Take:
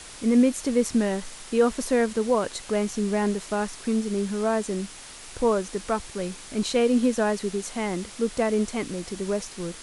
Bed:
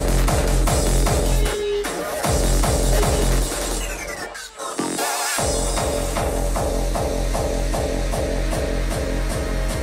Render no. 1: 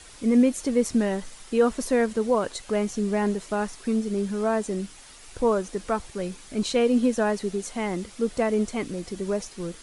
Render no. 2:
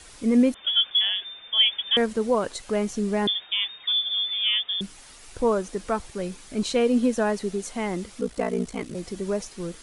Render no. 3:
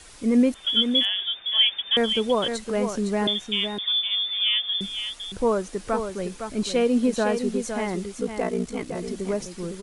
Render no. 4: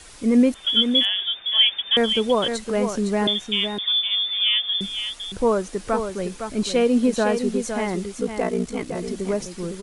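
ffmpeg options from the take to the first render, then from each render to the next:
-af "afftdn=nr=7:nf=-43"
-filter_complex "[0:a]asettb=1/sr,asplit=3[a][b][c];[a]atrim=end=0.544[d];[b]atrim=start=0.54:end=1.97,asetpts=PTS-STARTPTS,afade=t=in:d=0.004:c=qsin,afade=t=out:st=1.426:d=0.004:c=qsin,lowpass=f=3.1k:t=q:w=0.5098,lowpass=f=3.1k:t=q:w=0.6013,lowpass=f=3.1k:t=q:w=0.9,lowpass=f=3.1k:t=q:w=2.563,afreqshift=-3600[e];[c]atrim=start=1.966[f];[d][e]acrossfade=d=0.004:c1=hsin:c2=qsin[g];[g][f]acrossfade=d=0.004:c1=qsin:c2=hsin,asettb=1/sr,asplit=3[h][i][j];[h]atrim=end=3.274[k];[i]atrim=start=3.27:end=4.81,asetpts=PTS-STARTPTS,afade=t=in:d=0.004:c=qsin,afade=t=out:st=1.536:d=0.004:c=qsin,lowpass=f=3.1k:t=q:w=0.5098,lowpass=f=3.1k:t=q:w=0.6013,lowpass=f=3.1k:t=q:w=0.9,lowpass=f=3.1k:t=q:w=2.563,afreqshift=-3700[l];[j]atrim=start=4.806[m];[k][l]acrossfade=d=0.004:c1=hsin:c2=qsin[n];[n][m]acrossfade=d=0.004:c1=qsin:c2=hsin,asettb=1/sr,asplit=3[o][p][q];[o]atrim=end=8.204[r];[p]atrim=start=8.2:end=8.95,asetpts=PTS-STARTPTS,afade=t=in:d=0.004:c=qsin,afade=t=out:st=0.746:d=0.004:c=qsin,aeval=exprs='val(0)*sin(2*PI*29*n/s)':c=same[s];[q]atrim=start=8.946[t];[r][s]acrossfade=d=0.004:c1=hsin:c2=qsin[u];[u][t]acrossfade=d=0.004:c1=qsin:c2=hsin"
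-af "aecho=1:1:510:0.422"
-af "volume=2.5dB"

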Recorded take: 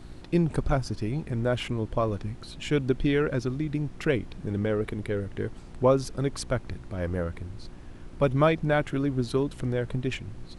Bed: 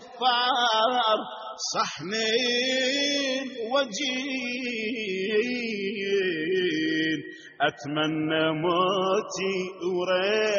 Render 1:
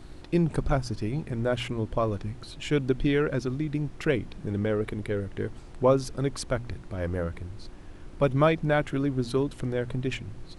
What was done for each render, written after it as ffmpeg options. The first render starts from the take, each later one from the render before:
-af "bandreject=f=60:t=h:w=4,bandreject=f=120:t=h:w=4,bandreject=f=180:t=h:w=4,bandreject=f=240:t=h:w=4"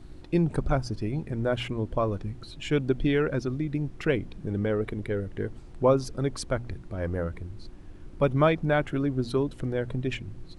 -af "afftdn=nr=6:nf=-45"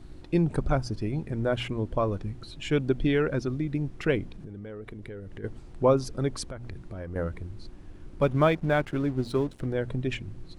-filter_complex "[0:a]asplit=3[a][b][c];[a]afade=t=out:st=4.28:d=0.02[d];[b]acompressor=threshold=-37dB:ratio=6:attack=3.2:release=140:knee=1:detection=peak,afade=t=in:st=4.28:d=0.02,afade=t=out:st=5.43:d=0.02[e];[c]afade=t=in:st=5.43:d=0.02[f];[d][e][f]amix=inputs=3:normalize=0,asettb=1/sr,asplit=3[g][h][i];[g]atrim=end=6.494[j];[h]atrim=start=6.49:end=7.16,asetpts=PTS-STARTPTS,afade=t=in:d=0.004:c=qsin,afade=t=out:st=0.666:d=0.004:c=qsin,acompressor=threshold=-33dB:ratio=10:attack=3.2:release=140:knee=1:detection=peak[k];[i]atrim=start=7.156[l];[j][k]acrossfade=d=0.004:c1=hsin:c2=qsin[m];[m][l]acrossfade=d=0.004:c1=qsin:c2=hsin,asettb=1/sr,asplit=3[n][o][p];[n]atrim=end=8.214[q];[o]atrim=start=8.21:end=9.66,asetpts=PTS-STARTPTS,afade=t=in:d=0.004:c=qsin,afade=t=out:st=1.446:d=0.004:c=qsin,aeval=exprs='sgn(val(0))*max(abs(val(0))-0.00501,0)':c=same[r];[p]atrim=start=9.656[s];[q][r]acrossfade=d=0.004:c1=hsin:c2=qsin[t];[t][s]acrossfade=d=0.004:c1=qsin:c2=hsin"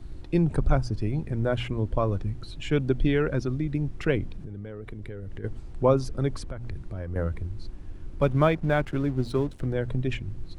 -filter_complex "[0:a]acrossover=split=110|2900[a][b][c];[a]acontrast=86[d];[c]alimiter=level_in=10dB:limit=-24dB:level=0:latency=1:release=149,volume=-10dB[e];[d][b][e]amix=inputs=3:normalize=0"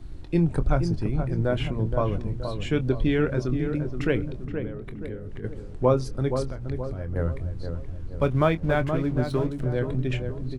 -filter_complex "[0:a]asplit=2[a][b];[b]adelay=24,volume=-12dB[c];[a][c]amix=inputs=2:normalize=0,asplit=2[d][e];[e]adelay=474,lowpass=f=1.2k:p=1,volume=-6.5dB,asplit=2[f][g];[g]adelay=474,lowpass=f=1.2k:p=1,volume=0.51,asplit=2[h][i];[i]adelay=474,lowpass=f=1.2k:p=1,volume=0.51,asplit=2[j][k];[k]adelay=474,lowpass=f=1.2k:p=1,volume=0.51,asplit=2[l][m];[m]adelay=474,lowpass=f=1.2k:p=1,volume=0.51,asplit=2[n][o];[o]adelay=474,lowpass=f=1.2k:p=1,volume=0.51[p];[d][f][h][j][l][n][p]amix=inputs=7:normalize=0"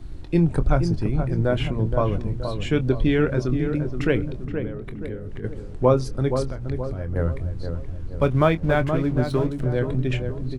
-af "volume=3dB"

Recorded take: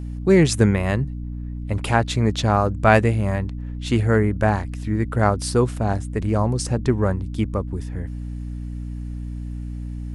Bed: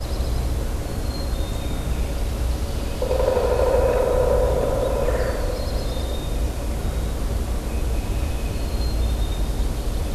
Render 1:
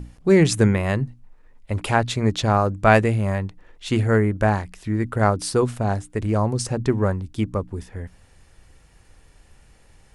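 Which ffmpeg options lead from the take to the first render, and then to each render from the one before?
-af "bandreject=f=60:t=h:w=6,bandreject=f=120:t=h:w=6,bandreject=f=180:t=h:w=6,bandreject=f=240:t=h:w=6,bandreject=f=300:t=h:w=6"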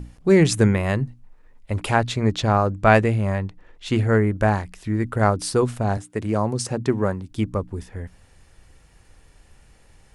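-filter_complex "[0:a]asettb=1/sr,asplit=3[a][b][c];[a]atrim=end=2.094[d];[b]atrim=start=2.09:end=4.27,asetpts=PTS-STARTPTS,afade=t=in:d=0.004:c=qsin,afade=t=out:st=2.176:d=0.004:c=qsin,highshelf=f=9.5k:g=-9[e];[c]atrim=start=4.266[f];[d][e]acrossfade=d=0.004:c1=hsin:c2=qsin[g];[g][f]acrossfade=d=0.004:c1=qsin:c2=hsin,asettb=1/sr,asplit=3[h][i][j];[h]atrim=end=5.974[k];[i]atrim=start=5.97:end=7.31,asetpts=PTS-STARTPTS,afade=t=in:d=0.004:c=qsin,afade=t=out:st=1.336:d=0.004:c=qsin,highpass=120[l];[j]atrim=start=7.306[m];[k][l]acrossfade=d=0.004:c1=hsin:c2=qsin[n];[n][m]acrossfade=d=0.004:c1=qsin:c2=hsin"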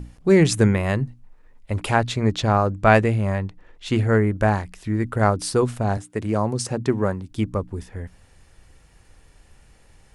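-af anull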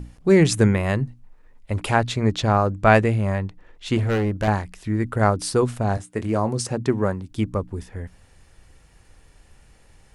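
-filter_complex "[0:a]asettb=1/sr,asplit=3[a][b][c];[a]atrim=end=3.974[d];[b]atrim=start=3.97:end=4.48,asetpts=PTS-STARTPTS,afade=t=in:d=0.004:c=qsin,afade=t=out:st=0.506:d=0.004:c=qsin,asoftclip=type=hard:threshold=-18.5dB[e];[c]atrim=start=4.476[f];[d][e]acrossfade=d=0.004:c1=hsin:c2=qsin[g];[g][f]acrossfade=d=0.004:c1=qsin:c2=hsin,asettb=1/sr,asplit=3[h][i][j];[h]atrim=end=5.924[k];[i]atrim=start=5.92:end=6.61,asetpts=PTS-STARTPTS,afade=t=in:d=0.004:c=qsin,afade=t=out:st=0.686:d=0.004:c=qsin,asplit=2[l][m];[m]adelay=22,volume=-11dB[n];[l][n]amix=inputs=2:normalize=0,atrim=end_sample=30429[o];[j]atrim=start=6.606[p];[k][o]acrossfade=d=0.004:c1=hsin:c2=qsin[q];[q][p]acrossfade=d=0.004:c1=qsin:c2=hsin"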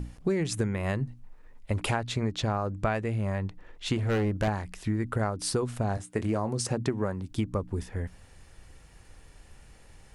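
-af "acompressor=threshold=-24dB:ratio=16"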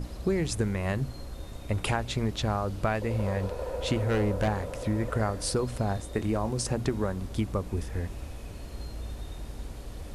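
-filter_complex "[1:a]volume=-15.5dB[a];[0:a][a]amix=inputs=2:normalize=0"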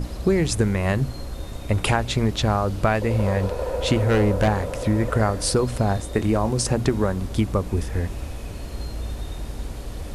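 -af "volume=7.5dB"

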